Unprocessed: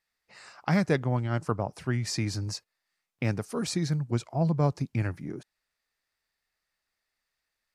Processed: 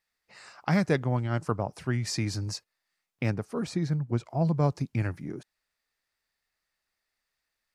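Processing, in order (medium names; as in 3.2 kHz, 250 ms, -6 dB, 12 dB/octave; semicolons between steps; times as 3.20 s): 3.30–4.26 s: treble shelf 3.1 kHz -11.5 dB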